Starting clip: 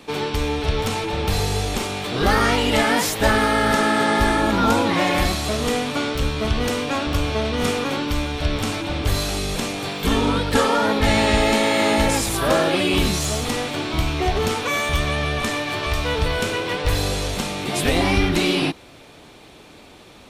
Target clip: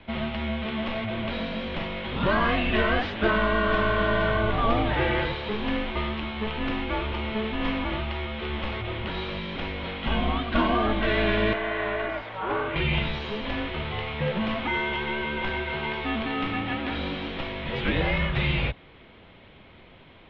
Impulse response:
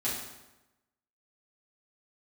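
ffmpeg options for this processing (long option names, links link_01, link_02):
-filter_complex "[0:a]highpass=frequency=210:width_type=q:width=0.5412,highpass=frequency=210:width_type=q:width=1.307,lowpass=frequency=3600:width_type=q:width=0.5176,lowpass=frequency=3600:width_type=q:width=0.7071,lowpass=frequency=3600:width_type=q:width=1.932,afreqshift=-220,asettb=1/sr,asplit=3[link_01][link_02][link_03];[link_01]atrim=end=11.534[link_04];[link_02]atrim=start=11.53:end=12.76,asetpts=PTS-STARTPTS,afade=type=in:duration=0.004:curve=qsin,afade=type=out:start_time=1.226:duration=0.004:curve=qsin,acrossover=split=490 2200:gain=0.224 1 0.224[link_05][link_06][link_07];[link_05][link_06][link_07]amix=inputs=3:normalize=0[link_08];[link_03]atrim=start=12.756[link_09];[link_04][link_08]acrossfade=duration=0.004:curve1=hsin:curve2=qsin[link_10];[link_10][link_09]acrossfade=duration=0.004:curve1=qsin:curve2=hsin,volume=-4dB"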